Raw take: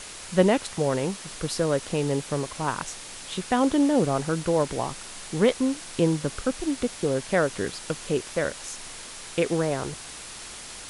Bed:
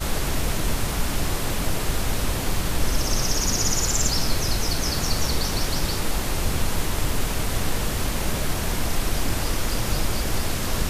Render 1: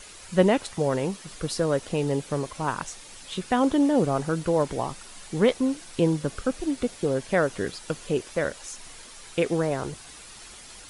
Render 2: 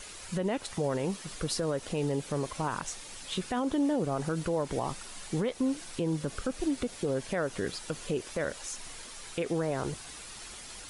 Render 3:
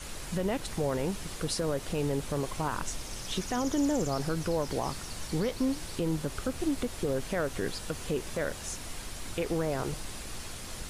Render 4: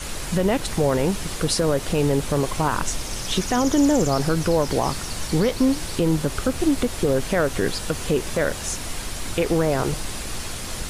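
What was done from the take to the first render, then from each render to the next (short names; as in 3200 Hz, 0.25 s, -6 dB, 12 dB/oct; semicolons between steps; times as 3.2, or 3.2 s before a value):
denoiser 8 dB, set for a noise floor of -41 dBFS
compressor 5:1, threshold -24 dBFS, peak gain reduction 10.5 dB; limiter -21 dBFS, peak gain reduction 8 dB
add bed -18 dB
gain +10 dB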